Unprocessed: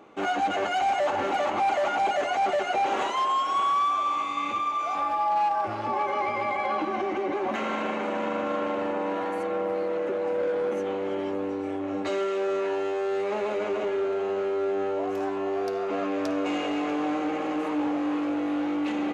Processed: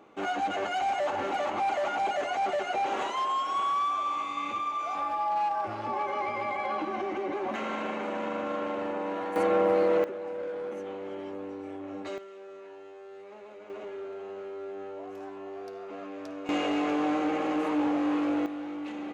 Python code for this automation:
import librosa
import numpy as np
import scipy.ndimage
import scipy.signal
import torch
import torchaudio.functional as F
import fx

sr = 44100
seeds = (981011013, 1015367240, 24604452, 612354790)

y = fx.gain(x, sr, db=fx.steps((0.0, -4.0), (9.36, 4.5), (10.04, -8.5), (12.18, -19.0), (13.7, -12.0), (16.49, 0.0), (18.46, -9.0)))